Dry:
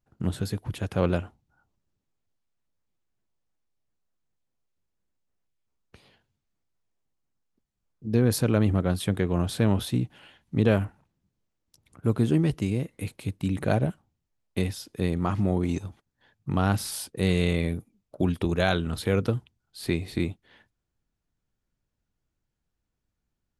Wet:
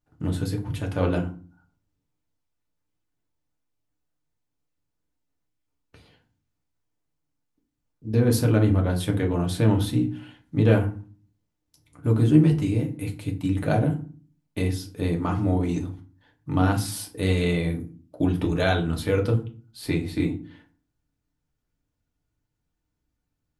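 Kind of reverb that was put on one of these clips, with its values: FDN reverb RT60 0.39 s, low-frequency decay 1.6×, high-frequency decay 0.65×, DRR 1 dB; gain -1.5 dB

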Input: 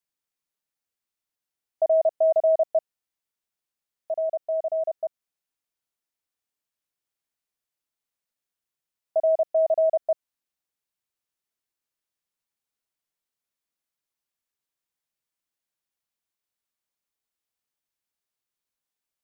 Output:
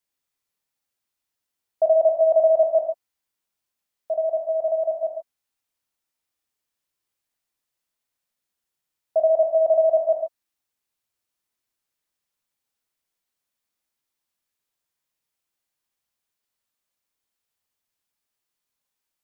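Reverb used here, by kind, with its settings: non-linear reverb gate 0.16 s flat, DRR 2 dB; gain +2.5 dB

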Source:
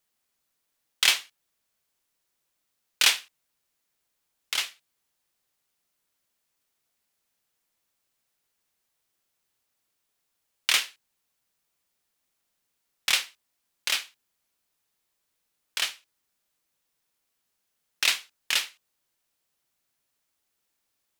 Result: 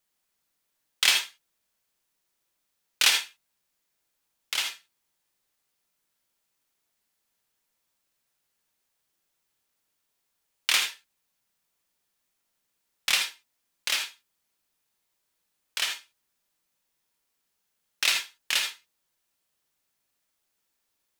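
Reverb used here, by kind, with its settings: non-linear reverb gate 0.1 s rising, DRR 4.5 dB; gain -1 dB

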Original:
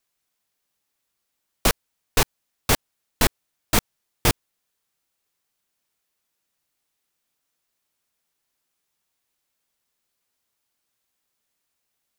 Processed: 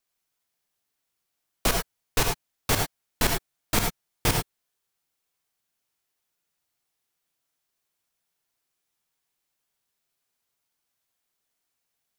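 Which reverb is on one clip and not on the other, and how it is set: non-linear reverb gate 0.12 s rising, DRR 2.5 dB; gain -4.5 dB

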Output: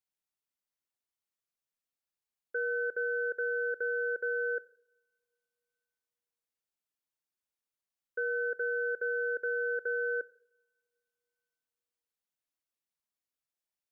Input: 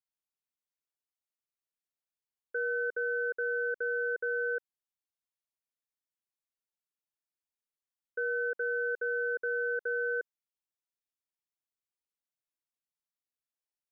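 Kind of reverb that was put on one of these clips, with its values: two-slope reverb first 0.62 s, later 2.6 s, from -25 dB, DRR 17.5 dB

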